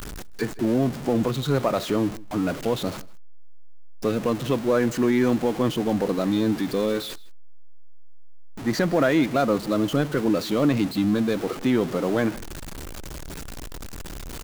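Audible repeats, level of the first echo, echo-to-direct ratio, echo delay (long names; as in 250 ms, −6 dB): 1, −22.0 dB, −22.0 dB, 158 ms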